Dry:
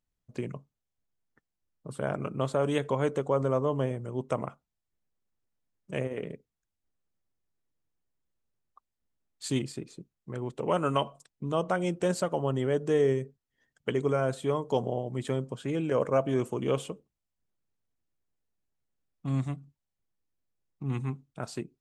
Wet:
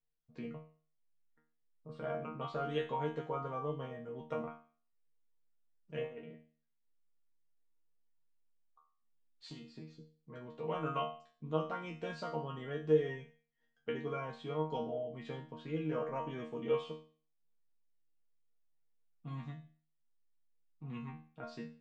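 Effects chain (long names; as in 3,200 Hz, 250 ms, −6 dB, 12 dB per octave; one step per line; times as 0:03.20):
low-pass filter 4,700 Hz 24 dB per octave
0:06.04–0:09.75: downward compressor 6 to 1, threshold −36 dBFS, peak gain reduction 12.5 dB
resonators tuned to a chord D#3 fifth, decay 0.42 s
level +8 dB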